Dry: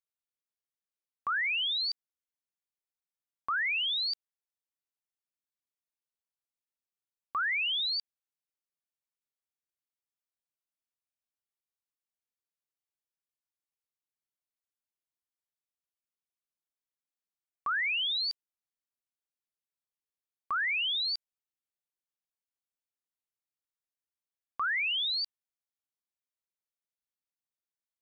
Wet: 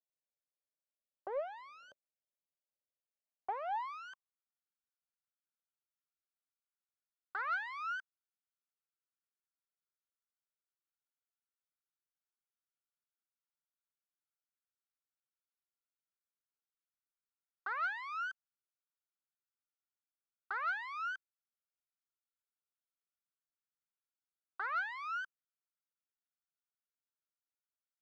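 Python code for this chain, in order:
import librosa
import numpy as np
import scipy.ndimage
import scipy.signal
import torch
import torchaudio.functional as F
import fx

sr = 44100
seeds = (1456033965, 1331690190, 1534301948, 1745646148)

y = fx.cycle_switch(x, sr, every=3, mode='inverted')
y = fx.high_shelf(y, sr, hz=2600.0, db=-11.5)
y = fx.filter_sweep_bandpass(y, sr, from_hz=570.0, to_hz=1400.0, start_s=3.14, end_s=4.54, q=6.7)
y = fx.bass_treble(y, sr, bass_db=13, treble_db=2)
y = 10.0 ** (-31.5 / 20.0) * np.tanh(y / 10.0 ** (-31.5 / 20.0))
y = F.gain(torch.from_numpy(y), 5.0).numpy()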